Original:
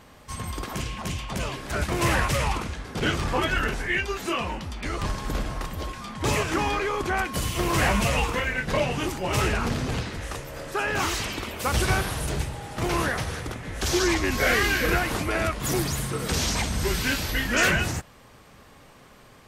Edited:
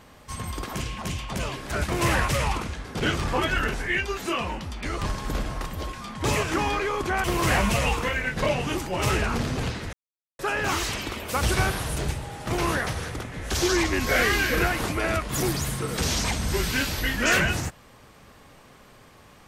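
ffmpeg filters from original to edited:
-filter_complex "[0:a]asplit=4[a][b][c][d];[a]atrim=end=7.242[e];[b]atrim=start=7.548:end=10.24,asetpts=PTS-STARTPTS,afade=t=out:st=2.688:d=0.004:c=hsin[f];[c]atrim=start=10.24:end=10.7,asetpts=PTS-STARTPTS,volume=0[g];[d]atrim=start=10.7,asetpts=PTS-STARTPTS,afade=t=in:d=0.004:c=hsin[h];[f][g][h]concat=n=3:v=0:a=1[i];[e][i]acrossfade=d=0.004:c1=hsin:c2=hsin"

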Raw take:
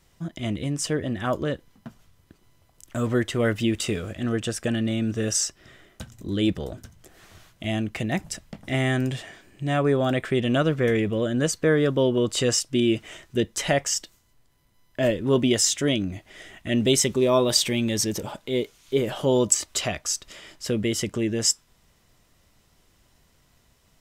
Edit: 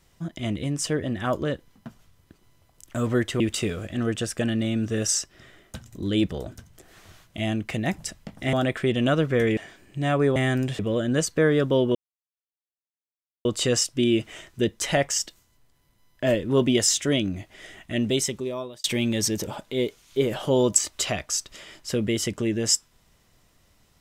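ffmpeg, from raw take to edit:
-filter_complex "[0:a]asplit=8[a][b][c][d][e][f][g][h];[a]atrim=end=3.402[i];[b]atrim=start=3.658:end=8.792[j];[c]atrim=start=10.008:end=11.052[k];[d]atrim=start=9.218:end=10.012[l];[e]atrim=start=8.788:end=9.222[m];[f]atrim=start=11.048:end=12.21,asetpts=PTS-STARTPTS,afade=t=out:st=1.158:d=0.004:c=hsin,apad=pad_dur=1.5[n];[g]atrim=start=12.21:end=17.6,asetpts=PTS-STARTPTS,afade=t=in:d=0.004:c=hsin,afade=t=out:st=4.32:d=1.07[o];[h]atrim=start=17.6,asetpts=PTS-STARTPTS,afade=t=in:d=0.004:c=hsin[p];[i][j]acrossfade=d=0.004:c1=hsin:c2=hsin[q];[q][k]acrossfade=d=0.004:c1=hsin:c2=hsin[r];[r][l]acrossfade=d=0.004:c1=hsin:c2=hsin[s];[s][m]acrossfade=d=0.004:c1=hsin:c2=hsin[t];[n][o][p]concat=n=3:v=0:a=1[u];[t][u]acrossfade=d=0.004:c1=hsin:c2=hsin"

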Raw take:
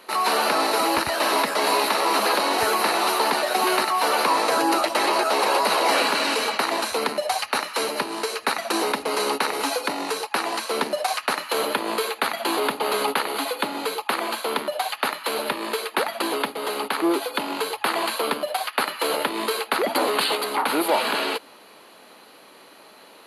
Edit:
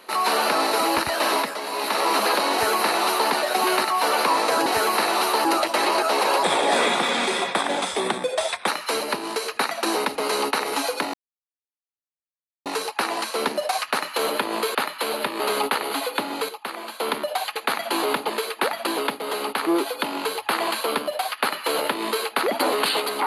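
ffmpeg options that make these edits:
-filter_complex "[0:a]asplit=14[a][b][c][d][e][f][g][h][i][j][k][l][m][n];[a]atrim=end=1.6,asetpts=PTS-STARTPTS,afade=t=out:st=1.32:d=0.28:silence=0.354813[o];[b]atrim=start=1.6:end=1.72,asetpts=PTS-STARTPTS,volume=-9dB[p];[c]atrim=start=1.72:end=4.662,asetpts=PTS-STARTPTS,afade=t=in:d=0.28:silence=0.354813[q];[d]atrim=start=2.518:end=3.312[r];[e]atrim=start=4.658:end=5.644[s];[f]atrim=start=5.64:end=7.55,asetpts=PTS-STARTPTS,asetrate=37485,aresample=44100,atrim=end_sample=99095,asetpts=PTS-STARTPTS[t];[g]atrim=start=7.546:end=10.01,asetpts=PTS-STARTPTS,afade=t=out:st=2.46:d=0.004:c=hsin,apad=pad_dur=1.52[u];[h]atrim=start=10.01:end=12.102,asetpts=PTS-STARTPTS,afade=t=in:d=0.004:c=hsin[v];[i]atrim=start=14.998:end=15.652[w];[j]atrim=start=12.838:end=13.932[x];[k]atrim=start=13.928:end=14.442,asetpts=PTS-STARTPTS,volume=-7.5dB[y];[l]atrim=start=14.438:end=15.002[z];[m]atrim=start=12.098:end=12.842[aa];[n]atrim=start=15.648[ab];[o][p][q]concat=n=3:v=0:a=1[ac];[ac][r]acrossfade=d=0.004:c1=hsin:c2=hsin[ad];[ad][s]acrossfade=d=0.004:c1=hsin:c2=hsin[ae];[ae][t]acrossfade=d=0.004:c1=hsin:c2=hsin[af];[u][v]concat=n=2:v=0:a=1[ag];[af][ag]acrossfade=d=0.004:c1=hsin:c2=hsin[ah];[ah][w]acrossfade=d=0.004:c1=hsin:c2=hsin[ai];[ai][x]acrossfade=d=0.004:c1=hsin:c2=hsin[aj];[aj][y]acrossfade=d=0.004:c1=hsin:c2=hsin[ak];[ak][z]acrossfade=d=0.004:c1=hsin:c2=hsin[al];[al][aa]acrossfade=d=0.004:c1=hsin:c2=hsin[am];[am][ab]acrossfade=d=0.004:c1=hsin:c2=hsin"

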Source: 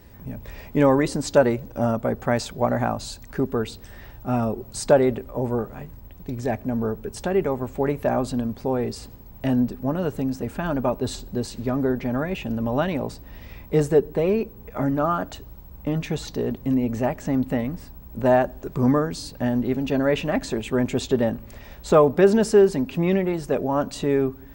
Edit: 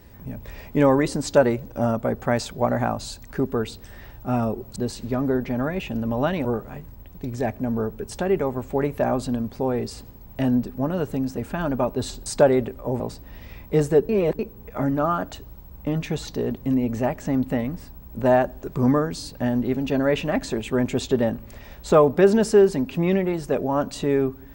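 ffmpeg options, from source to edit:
-filter_complex "[0:a]asplit=7[a][b][c][d][e][f][g];[a]atrim=end=4.762[h];[b]atrim=start=11.308:end=13.002[i];[c]atrim=start=5.498:end=11.312[j];[d]atrim=start=4.758:end=5.502[k];[e]atrim=start=12.998:end=14.092[l];[f]atrim=start=14.088:end=14.392,asetpts=PTS-STARTPTS,areverse[m];[g]atrim=start=14.388[n];[h][i]acrossfade=d=0.004:c1=hsin:c2=hsin[o];[o][j]acrossfade=d=0.004:c1=hsin:c2=hsin[p];[p][k]acrossfade=d=0.004:c1=hsin:c2=hsin[q];[q][l]acrossfade=d=0.004:c1=hsin:c2=hsin[r];[r][m]acrossfade=d=0.004:c1=hsin:c2=hsin[s];[s][n]acrossfade=d=0.004:c1=hsin:c2=hsin"

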